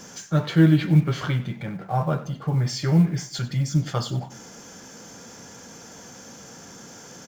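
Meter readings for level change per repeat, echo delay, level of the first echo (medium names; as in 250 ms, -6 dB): -7.5 dB, 94 ms, -17.0 dB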